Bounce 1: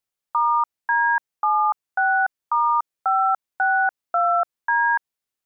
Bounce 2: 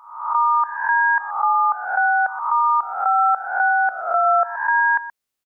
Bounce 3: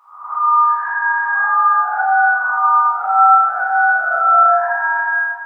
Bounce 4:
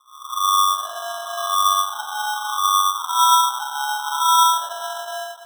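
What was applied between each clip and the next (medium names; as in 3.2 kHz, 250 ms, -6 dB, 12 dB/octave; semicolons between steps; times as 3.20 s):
reverse spectral sustain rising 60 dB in 0.70 s; delay 125 ms -14.5 dB; trim +2 dB
bass shelf 360 Hz -11.5 dB; band-stop 910 Hz, Q 6; plate-style reverb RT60 2.3 s, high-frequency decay 0.95×, DRR -9 dB; trim -4 dB
ladder high-pass 1.2 kHz, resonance 80%; sample-and-hold 19×; trim -6.5 dB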